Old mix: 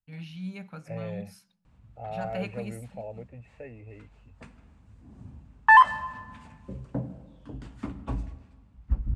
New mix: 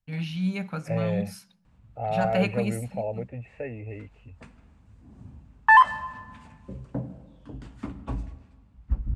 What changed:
first voice +9.5 dB
second voice +8.5 dB

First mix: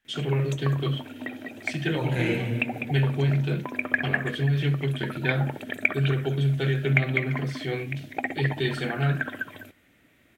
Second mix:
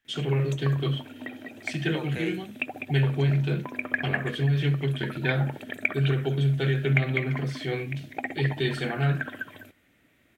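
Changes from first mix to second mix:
second voice: add Butterworth high-pass 300 Hz
background −3.0 dB
reverb: off

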